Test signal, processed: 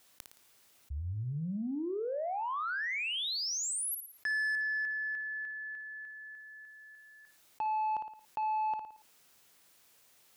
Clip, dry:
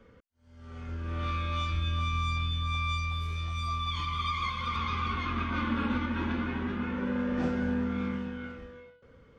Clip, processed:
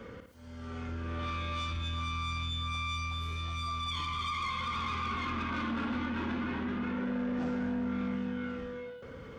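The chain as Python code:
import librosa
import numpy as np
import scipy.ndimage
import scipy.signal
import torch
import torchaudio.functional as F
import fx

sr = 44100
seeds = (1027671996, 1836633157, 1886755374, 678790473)

y = fx.highpass(x, sr, hz=89.0, slope=6)
y = 10.0 ** (-28.0 / 20.0) * np.tanh(y / 10.0 ** (-28.0 / 20.0))
y = fx.room_flutter(y, sr, wall_m=9.7, rt60_s=0.29)
y = fx.env_flatten(y, sr, amount_pct=50)
y = F.gain(torch.from_numpy(y), -2.5).numpy()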